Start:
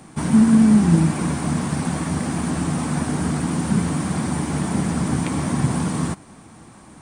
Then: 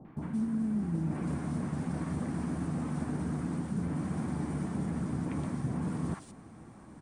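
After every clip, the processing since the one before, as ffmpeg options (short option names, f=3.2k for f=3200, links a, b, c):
-filter_complex "[0:a]highshelf=f=2.6k:g=-12,areverse,acompressor=threshold=-25dB:ratio=6,areverse,acrossover=split=880|3100[a][b][c];[b]adelay=50[d];[c]adelay=170[e];[a][d][e]amix=inputs=3:normalize=0,volume=-5dB"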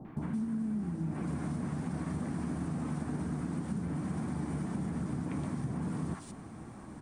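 -af "acompressor=threshold=-36dB:ratio=6,equalizer=f=520:t=o:w=0.21:g=-2,bandreject=f=83.4:t=h:w=4,bandreject=f=166.8:t=h:w=4,bandreject=f=250.2:t=h:w=4,bandreject=f=333.6:t=h:w=4,bandreject=f=417:t=h:w=4,bandreject=f=500.4:t=h:w=4,bandreject=f=583.8:t=h:w=4,bandreject=f=667.2:t=h:w=4,bandreject=f=750.6:t=h:w=4,bandreject=f=834:t=h:w=4,bandreject=f=917.4:t=h:w=4,bandreject=f=1.0008k:t=h:w=4,bandreject=f=1.0842k:t=h:w=4,bandreject=f=1.1676k:t=h:w=4,bandreject=f=1.251k:t=h:w=4,bandreject=f=1.3344k:t=h:w=4,bandreject=f=1.4178k:t=h:w=4,bandreject=f=1.5012k:t=h:w=4,bandreject=f=1.5846k:t=h:w=4,bandreject=f=1.668k:t=h:w=4,bandreject=f=1.7514k:t=h:w=4,bandreject=f=1.8348k:t=h:w=4,bandreject=f=1.9182k:t=h:w=4,bandreject=f=2.0016k:t=h:w=4,bandreject=f=2.085k:t=h:w=4,bandreject=f=2.1684k:t=h:w=4,bandreject=f=2.2518k:t=h:w=4,bandreject=f=2.3352k:t=h:w=4,bandreject=f=2.4186k:t=h:w=4,bandreject=f=2.502k:t=h:w=4,bandreject=f=2.5854k:t=h:w=4,bandreject=f=2.6688k:t=h:w=4,bandreject=f=2.7522k:t=h:w=4,bandreject=f=2.8356k:t=h:w=4,bandreject=f=2.919k:t=h:w=4,bandreject=f=3.0024k:t=h:w=4,bandreject=f=3.0858k:t=h:w=4,bandreject=f=3.1692k:t=h:w=4,bandreject=f=3.2526k:t=h:w=4,volume=4.5dB"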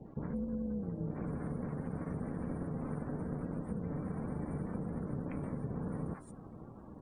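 -af "aeval=exprs='val(0)*gte(abs(val(0)),0.00251)':c=same,tremolo=f=280:d=0.75,afftdn=nr=24:nf=-55"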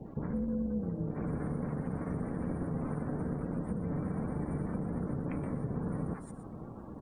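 -filter_complex "[0:a]aecho=1:1:121:0.266,asplit=2[a][b];[b]alimiter=level_in=9dB:limit=-24dB:level=0:latency=1:release=423,volume=-9dB,volume=-2dB[c];[a][c]amix=inputs=2:normalize=0"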